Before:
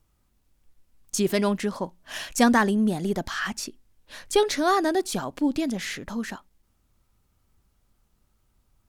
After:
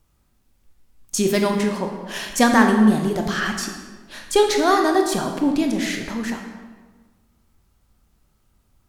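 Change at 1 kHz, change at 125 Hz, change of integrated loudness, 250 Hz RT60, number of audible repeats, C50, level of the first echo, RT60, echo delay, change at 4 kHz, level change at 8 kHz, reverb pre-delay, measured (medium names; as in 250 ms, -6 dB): +5.5 dB, +5.5 dB, +5.0 dB, 1.6 s, no echo, 5.5 dB, no echo, 1.4 s, no echo, +5.0 dB, +4.5 dB, 18 ms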